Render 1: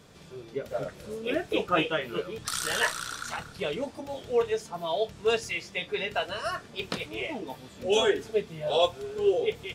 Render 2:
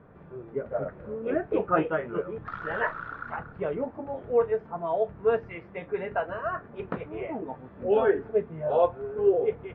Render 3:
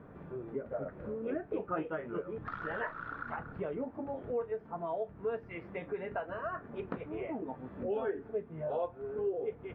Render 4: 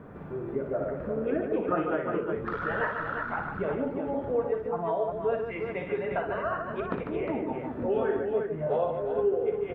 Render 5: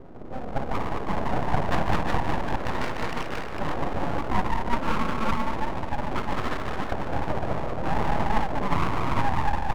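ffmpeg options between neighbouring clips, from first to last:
ffmpeg -i in.wav -af "lowpass=frequency=1600:width=0.5412,lowpass=frequency=1600:width=1.3066,volume=2dB" out.wav
ffmpeg -i in.wav -af "equalizer=frequency=270:width_type=o:width=0.64:gain=4.5,acompressor=threshold=-38dB:ratio=2.5" out.wav
ffmpeg -i in.wav -af "aecho=1:1:59|147|357:0.447|0.473|0.501,volume=6dB" out.wav
ffmpeg -i in.wav -af "aecho=1:1:210|378|512.4|619.9|705.9:0.631|0.398|0.251|0.158|0.1,adynamicsmooth=sensitivity=0.5:basefreq=560,aeval=exprs='abs(val(0))':channel_layout=same,volume=5.5dB" out.wav

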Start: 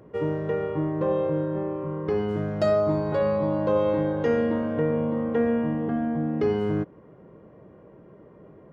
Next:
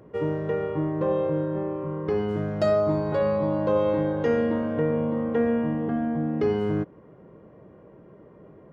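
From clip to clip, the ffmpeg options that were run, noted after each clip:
ffmpeg -i in.wav -af anull out.wav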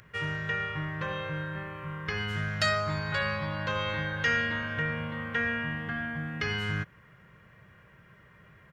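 ffmpeg -i in.wav -af "firequalizer=gain_entry='entry(110,0);entry(290,-19);entry(830,-8);entry(1600,12)':delay=0.05:min_phase=1" out.wav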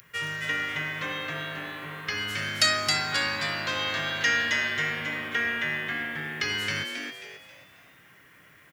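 ffmpeg -i in.wav -filter_complex "[0:a]highpass=frequency=130:poles=1,crystalizer=i=6.5:c=0,asplit=2[link_01][link_02];[link_02]asplit=5[link_03][link_04][link_05][link_06][link_07];[link_03]adelay=269,afreqshift=140,volume=-4dB[link_08];[link_04]adelay=538,afreqshift=280,volume=-12.4dB[link_09];[link_05]adelay=807,afreqshift=420,volume=-20.8dB[link_10];[link_06]adelay=1076,afreqshift=560,volume=-29.2dB[link_11];[link_07]adelay=1345,afreqshift=700,volume=-37.6dB[link_12];[link_08][link_09][link_10][link_11][link_12]amix=inputs=5:normalize=0[link_13];[link_01][link_13]amix=inputs=2:normalize=0,volume=-4dB" out.wav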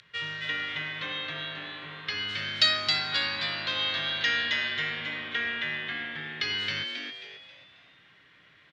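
ffmpeg -i in.wav -af "lowpass=frequency=3800:width_type=q:width=3.5,volume=-5.5dB" out.wav

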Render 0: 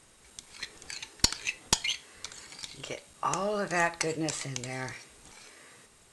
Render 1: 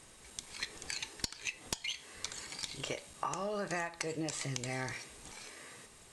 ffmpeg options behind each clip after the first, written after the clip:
ffmpeg -i in.wav -af "bandreject=frequency=1400:width=15,alimiter=limit=-11.5dB:level=0:latency=1:release=481,acompressor=threshold=-35dB:ratio=16,volume=2dB" out.wav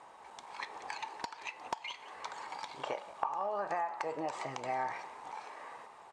ffmpeg -i in.wav -filter_complex "[0:a]bandpass=frequency=880:width_type=q:width=4.2:csg=0,acompressor=threshold=-48dB:ratio=10,asplit=7[link_01][link_02][link_03][link_04][link_05][link_06][link_07];[link_02]adelay=178,afreqshift=58,volume=-17dB[link_08];[link_03]adelay=356,afreqshift=116,volume=-21.4dB[link_09];[link_04]adelay=534,afreqshift=174,volume=-25.9dB[link_10];[link_05]adelay=712,afreqshift=232,volume=-30.3dB[link_11];[link_06]adelay=890,afreqshift=290,volume=-34.7dB[link_12];[link_07]adelay=1068,afreqshift=348,volume=-39.2dB[link_13];[link_01][link_08][link_09][link_10][link_11][link_12][link_13]amix=inputs=7:normalize=0,volume=17dB" out.wav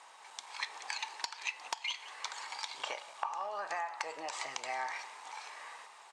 ffmpeg -i in.wav -af "bandpass=frequency=6100:width_type=q:width=0.55:csg=0,volume=9.5dB" out.wav

